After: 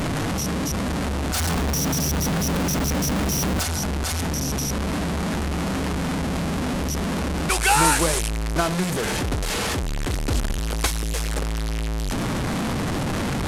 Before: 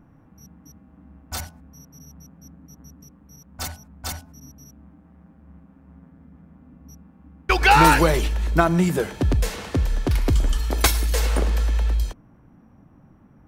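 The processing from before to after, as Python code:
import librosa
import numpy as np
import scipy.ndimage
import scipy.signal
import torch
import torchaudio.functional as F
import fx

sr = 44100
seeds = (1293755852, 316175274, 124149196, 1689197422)

y = fx.delta_mod(x, sr, bps=64000, step_db=-13.5)
y = fx.leveller(y, sr, passes=3, at=(1.34, 3.63))
y = fx.peak_eq(y, sr, hz=9000.0, db=10.0, octaves=1.0, at=(7.5, 8.29))
y = F.gain(torch.from_numpy(y), -5.0).numpy()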